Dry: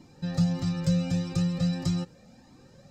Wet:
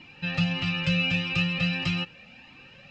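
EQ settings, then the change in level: resonant low-pass 2.7 kHz, resonance Q 12; bass shelf 290 Hz -10.5 dB; peaking EQ 460 Hz -7.5 dB 2 oct; +8.0 dB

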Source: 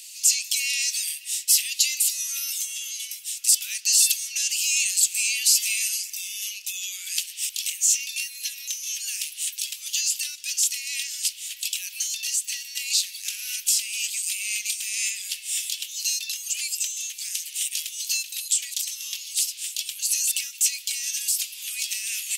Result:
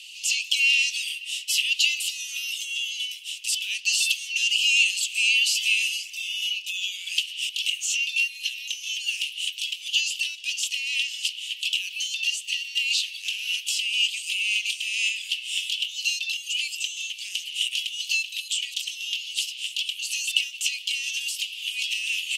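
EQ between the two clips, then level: band-pass filter 2.9 kHz, Q 7.4; tilt EQ +2.5 dB/octave; +9.0 dB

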